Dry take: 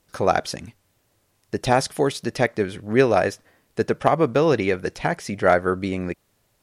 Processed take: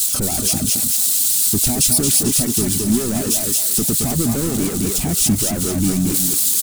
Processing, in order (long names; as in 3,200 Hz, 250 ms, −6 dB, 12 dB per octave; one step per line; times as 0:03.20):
spike at every zero crossing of −21.5 dBFS
brickwall limiter −15 dBFS, peak gain reduction 11 dB
parametric band 1,600 Hz −15 dB 0.3 octaves
single-tap delay 218 ms −8 dB
leveller curve on the samples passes 5
reverb reduction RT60 0.58 s
octave-band graphic EQ 125/250/500/1,000/2,000/4,000/8,000 Hz −3/+8/−12/−9/−7/−12/+10 dB
on a send: feedback echo with a high-pass in the loop 223 ms, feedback 64%, high-pass 680 Hz, level −7 dB
on the sum: pitch-shifted copies added −12 semitones −10 dB
level −1 dB